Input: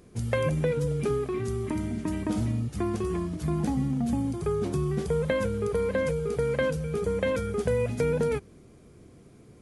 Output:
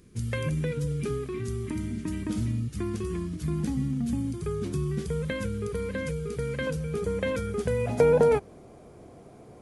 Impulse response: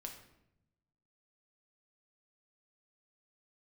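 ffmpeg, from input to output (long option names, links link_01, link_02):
-af "asetnsamples=nb_out_samples=441:pad=0,asendcmd='6.67 equalizer g -4;7.87 equalizer g 14',equalizer=frequency=720:width_type=o:width=1.2:gain=-13"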